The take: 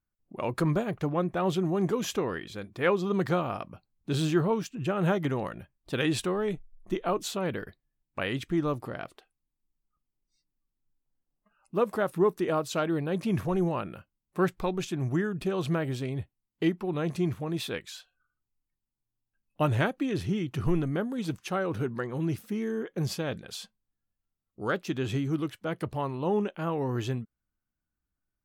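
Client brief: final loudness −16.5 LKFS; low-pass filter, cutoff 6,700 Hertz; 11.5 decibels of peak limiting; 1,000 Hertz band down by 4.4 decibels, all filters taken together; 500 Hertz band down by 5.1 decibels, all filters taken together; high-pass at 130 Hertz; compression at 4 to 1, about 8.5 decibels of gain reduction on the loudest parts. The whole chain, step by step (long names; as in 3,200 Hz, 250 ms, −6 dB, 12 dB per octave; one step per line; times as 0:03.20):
high-pass filter 130 Hz
low-pass filter 6,700 Hz
parametric band 500 Hz −6 dB
parametric band 1,000 Hz −4 dB
downward compressor 4 to 1, threshold −34 dBFS
level +25.5 dB
brickwall limiter −7 dBFS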